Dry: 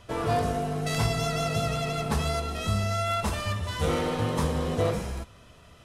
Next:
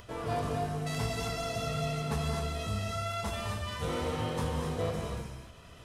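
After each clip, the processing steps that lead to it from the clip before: upward compressor, threshold -36 dBFS; gated-style reverb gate 290 ms rising, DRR 2 dB; trim -8 dB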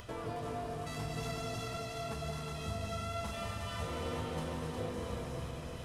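compression 6:1, threshold -40 dBFS, peak gain reduction 12 dB; echo whose repeats swap between lows and highs 181 ms, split 820 Hz, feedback 80%, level -2.5 dB; trim +1.5 dB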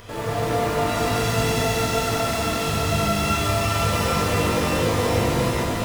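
in parallel at -8 dB: word length cut 6-bit, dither none; on the sum: pitch-shifted reverb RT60 3.6 s, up +12 st, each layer -8 dB, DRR -10 dB; trim +4 dB

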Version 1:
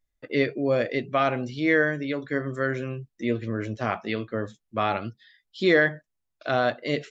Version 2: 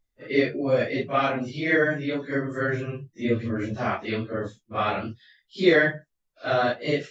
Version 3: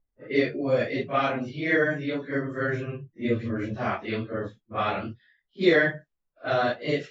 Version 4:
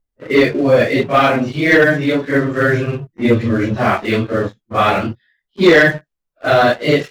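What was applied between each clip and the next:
phase randomisation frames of 100 ms; trim +1 dB
level-controlled noise filter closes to 1.2 kHz, open at -19.5 dBFS; trim -1.5 dB
waveshaping leveller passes 2; trim +6 dB

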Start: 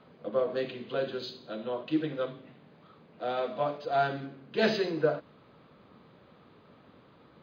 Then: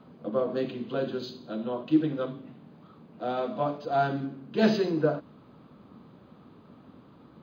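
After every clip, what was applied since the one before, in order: ten-band graphic EQ 250 Hz +5 dB, 500 Hz -5 dB, 2 kHz -8 dB, 4 kHz -5 dB; trim +4.5 dB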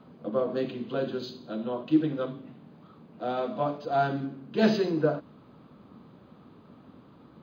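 no audible change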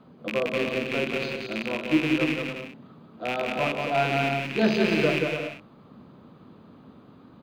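rattle on loud lows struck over -38 dBFS, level -18 dBFS; bouncing-ball echo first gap 180 ms, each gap 0.6×, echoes 5

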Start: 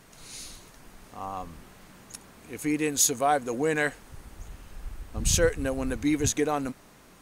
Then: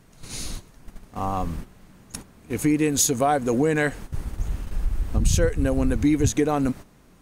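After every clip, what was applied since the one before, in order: gate -45 dBFS, range -12 dB; bass shelf 330 Hz +10.5 dB; compression 3:1, threshold -25 dBFS, peak gain reduction 10.5 dB; trim +6.5 dB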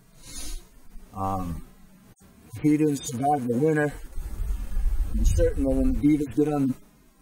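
harmonic-percussive separation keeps harmonic; treble shelf 9.7 kHz +8.5 dB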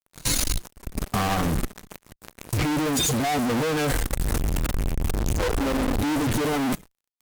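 fuzz box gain 49 dB, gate -47 dBFS; level held to a coarse grid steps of 19 dB; Chebyshev shaper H 5 -21 dB, 7 -19 dB, 8 -19 dB, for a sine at -8 dBFS; trim -4 dB

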